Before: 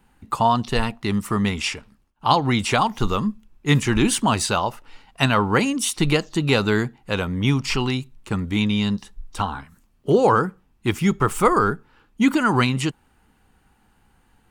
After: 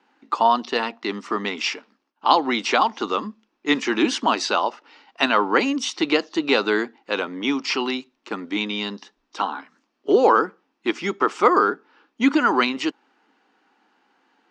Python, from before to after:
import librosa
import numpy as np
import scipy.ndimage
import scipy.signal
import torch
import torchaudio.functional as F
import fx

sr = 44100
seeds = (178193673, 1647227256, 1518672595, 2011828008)

y = scipy.signal.sosfilt(scipy.signal.ellip(3, 1.0, 40, [280.0, 5600.0], 'bandpass', fs=sr, output='sos'), x)
y = y * librosa.db_to_amplitude(1.5)